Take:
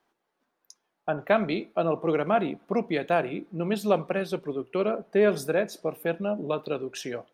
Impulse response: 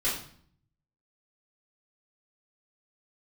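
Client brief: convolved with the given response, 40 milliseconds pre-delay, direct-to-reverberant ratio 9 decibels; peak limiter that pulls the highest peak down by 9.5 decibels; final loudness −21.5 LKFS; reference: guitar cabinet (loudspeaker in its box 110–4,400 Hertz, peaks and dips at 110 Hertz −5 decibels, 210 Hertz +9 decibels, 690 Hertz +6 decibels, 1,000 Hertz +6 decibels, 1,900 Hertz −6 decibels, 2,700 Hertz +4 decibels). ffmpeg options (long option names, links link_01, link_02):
-filter_complex "[0:a]alimiter=limit=-18dB:level=0:latency=1,asplit=2[link_01][link_02];[1:a]atrim=start_sample=2205,adelay=40[link_03];[link_02][link_03]afir=irnorm=-1:irlink=0,volume=-18dB[link_04];[link_01][link_04]amix=inputs=2:normalize=0,highpass=110,equalizer=frequency=110:width_type=q:width=4:gain=-5,equalizer=frequency=210:width_type=q:width=4:gain=9,equalizer=frequency=690:width_type=q:width=4:gain=6,equalizer=frequency=1000:width_type=q:width=4:gain=6,equalizer=frequency=1900:width_type=q:width=4:gain=-6,equalizer=frequency=2700:width_type=q:width=4:gain=4,lowpass=frequency=4400:width=0.5412,lowpass=frequency=4400:width=1.3066,volume=5dB"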